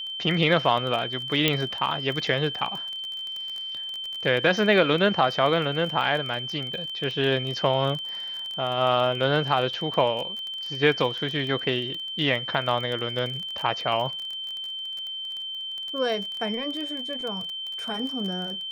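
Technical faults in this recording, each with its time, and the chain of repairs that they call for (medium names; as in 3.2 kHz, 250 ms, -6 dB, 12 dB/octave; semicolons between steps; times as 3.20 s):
crackle 24 per s -30 dBFS
whine 3.1 kHz -31 dBFS
1.48 s: pop -6 dBFS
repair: de-click; band-stop 3.1 kHz, Q 30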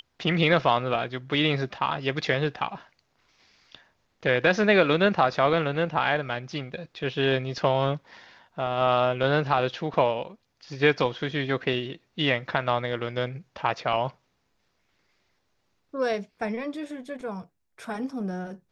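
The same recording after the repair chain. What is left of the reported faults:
nothing left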